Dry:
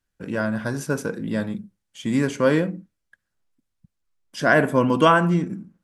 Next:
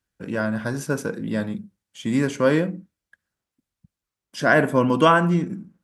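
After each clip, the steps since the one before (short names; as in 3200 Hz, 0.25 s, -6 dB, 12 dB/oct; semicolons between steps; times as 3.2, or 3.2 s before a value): HPF 42 Hz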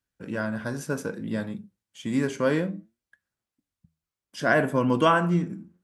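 flange 0.63 Hz, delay 6.9 ms, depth 5.9 ms, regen +78%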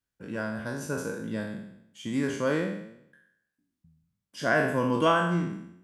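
spectral trails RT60 0.76 s; gain -4.5 dB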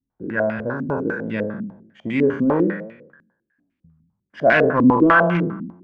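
in parallel at -11 dB: wrapped overs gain 18.5 dB; on the sum: stepped low-pass 10 Hz 250–2400 Hz; gain +4 dB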